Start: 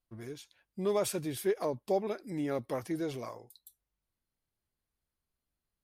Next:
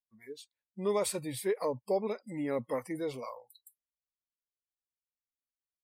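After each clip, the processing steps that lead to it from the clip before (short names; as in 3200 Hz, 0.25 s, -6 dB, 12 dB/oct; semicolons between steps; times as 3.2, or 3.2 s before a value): ripple EQ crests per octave 0.97, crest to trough 7 dB; spectral noise reduction 26 dB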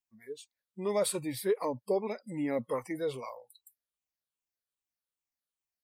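moving spectral ripple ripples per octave 0.68, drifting -2.5 Hz, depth 8 dB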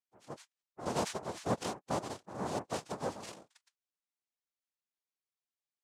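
noise vocoder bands 2; gain -5 dB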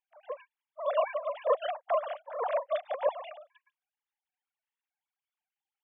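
sine-wave speech; gain +6.5 dB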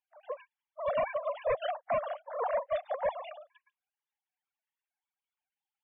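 overloaded stage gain 25 dB; loudest bins only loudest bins 64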